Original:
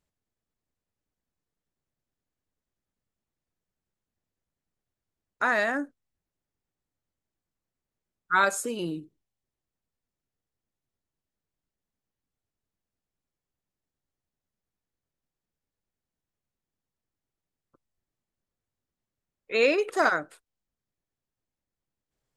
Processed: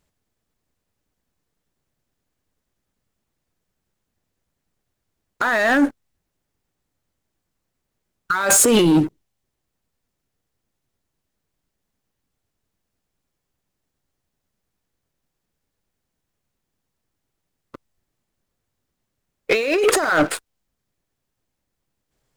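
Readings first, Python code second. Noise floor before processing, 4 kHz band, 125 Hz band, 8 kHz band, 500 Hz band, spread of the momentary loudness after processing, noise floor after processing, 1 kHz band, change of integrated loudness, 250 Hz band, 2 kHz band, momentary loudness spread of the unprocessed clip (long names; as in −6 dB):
below −85 dBFS, +11.0 dB, +17.0 dB, +19.5 dB, +8.0 dB, 11 LU, −79 dBFS, +5.0 dB, +8.5 dB, +15.0 dB, +5.5 dB, 11 LU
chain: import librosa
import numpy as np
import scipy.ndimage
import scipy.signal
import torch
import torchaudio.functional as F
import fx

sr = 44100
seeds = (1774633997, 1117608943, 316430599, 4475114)

y = fx.over_compress(x, sr, threshold_db=-35.0, ratio=-1.0)
y = fx.leveller(y, sr, passes=3)
y = y * librosa.db_to_amplitude(8.5)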